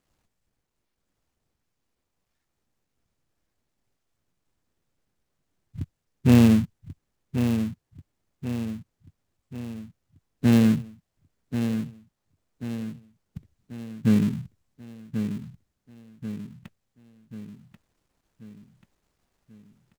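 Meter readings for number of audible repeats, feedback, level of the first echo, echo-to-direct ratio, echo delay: 5, 50%, -8.5 dB, -7.0 dB, 1087 ms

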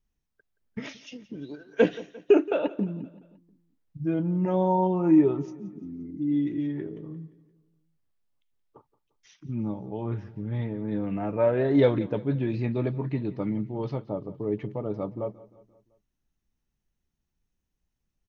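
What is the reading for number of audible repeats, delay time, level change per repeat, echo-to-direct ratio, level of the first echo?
3, 174 ms, -6.0 dB, -17.5 dB, -19.0 dB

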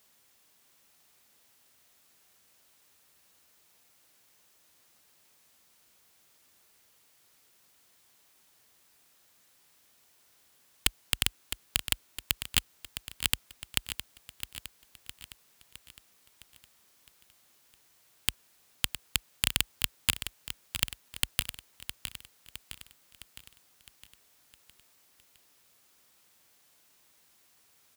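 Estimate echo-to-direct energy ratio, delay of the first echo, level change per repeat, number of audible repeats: -8.5 dB, 661 ms, -5.5 dB, 5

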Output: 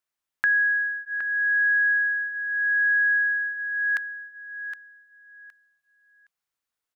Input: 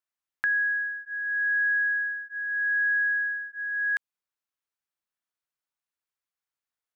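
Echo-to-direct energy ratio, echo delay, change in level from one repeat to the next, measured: -10.0 dB, 766 ms, -13.5 dB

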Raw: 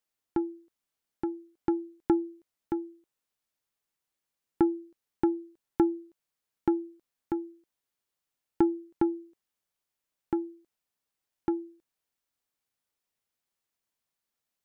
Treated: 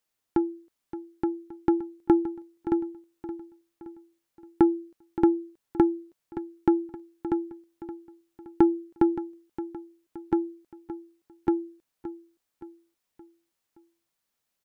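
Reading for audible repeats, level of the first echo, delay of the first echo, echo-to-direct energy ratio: 4, -13.0 dB, 571 ms, -12.0 dB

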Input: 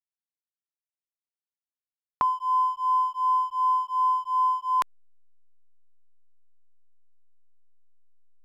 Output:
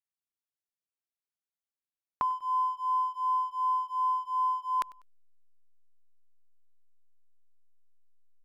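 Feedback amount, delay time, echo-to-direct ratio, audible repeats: 35%, 98 ms, -21.5 dB, 2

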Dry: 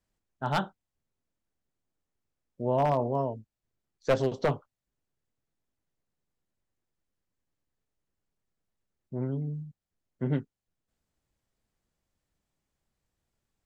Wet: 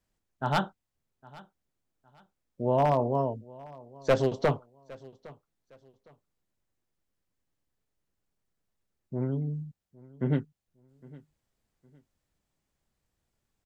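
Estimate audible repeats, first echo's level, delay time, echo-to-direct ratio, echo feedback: 2, -22.0 dB, 810 ms, -21.5 dB, 29%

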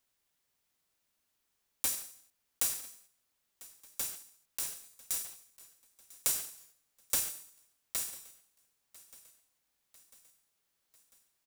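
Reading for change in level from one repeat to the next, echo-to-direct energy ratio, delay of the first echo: -5.0 dB, -19.5 dB, 997 ms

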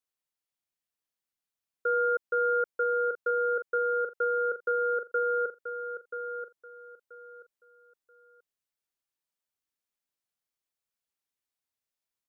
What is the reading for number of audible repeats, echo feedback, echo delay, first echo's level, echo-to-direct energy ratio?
3, 24%, 982 ms, -9.0 dB, -8.5 dB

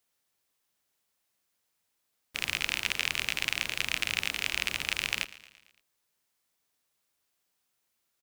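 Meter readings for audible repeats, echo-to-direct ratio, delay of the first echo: 4, -16.0 dB, 113 ms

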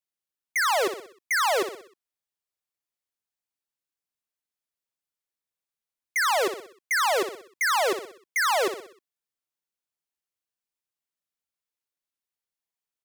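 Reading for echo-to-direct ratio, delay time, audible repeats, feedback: -8.5 dB, 62 ms, 5, 48%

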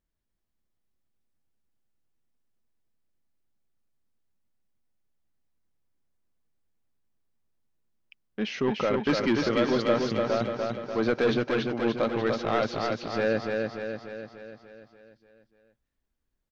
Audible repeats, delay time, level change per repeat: 7, 294 ms, -5.0 dB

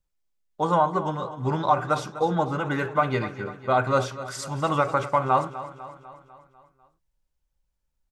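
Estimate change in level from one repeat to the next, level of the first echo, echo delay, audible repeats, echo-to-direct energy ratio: -5.0 dB, -14.5 dB, 249 ms, 5, -13.0 dB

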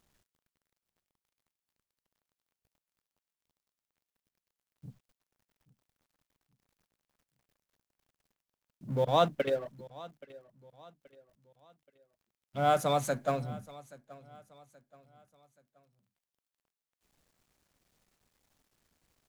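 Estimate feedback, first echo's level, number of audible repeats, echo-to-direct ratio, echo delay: 39%, -20.5 dB, 2, -20.0 dB, 827 ms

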